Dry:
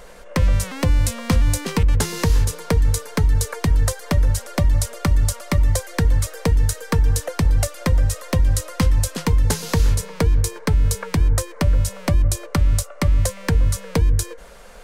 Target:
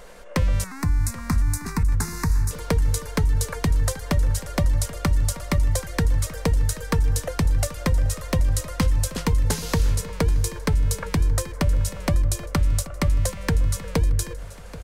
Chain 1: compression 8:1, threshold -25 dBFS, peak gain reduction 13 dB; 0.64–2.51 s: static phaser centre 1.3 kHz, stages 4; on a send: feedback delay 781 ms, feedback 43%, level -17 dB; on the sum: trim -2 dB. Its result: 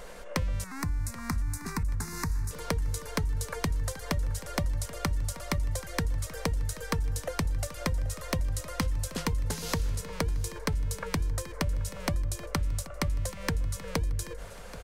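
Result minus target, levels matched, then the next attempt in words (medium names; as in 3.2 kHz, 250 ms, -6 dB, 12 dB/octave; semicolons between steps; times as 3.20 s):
compression: peak gain reduction +10 dB
compression 8:1, threshold -13.5 dBFS, peak gain reduction 3 dB; 0.64–2.51 s: static phaser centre 1.3 kHz, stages 4; on a send: feedback delay 781 ms, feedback 43%, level -17 dB; on the sum: trim -2 dB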